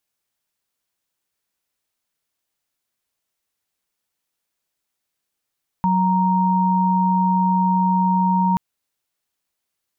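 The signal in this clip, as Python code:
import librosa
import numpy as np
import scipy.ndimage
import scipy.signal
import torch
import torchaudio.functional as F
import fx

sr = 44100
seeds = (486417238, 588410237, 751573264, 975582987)

y = fx.chord(sr, length_s=2.73, notes=(54, 82), wave='sine', level_db=-17.5)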